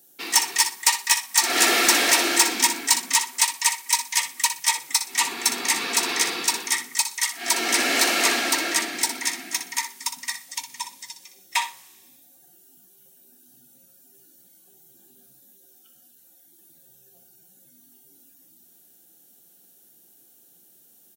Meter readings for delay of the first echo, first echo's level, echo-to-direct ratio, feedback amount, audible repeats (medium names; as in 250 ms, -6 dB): 61 ms, -10.0 dB, -10.0 dB, 21%, 2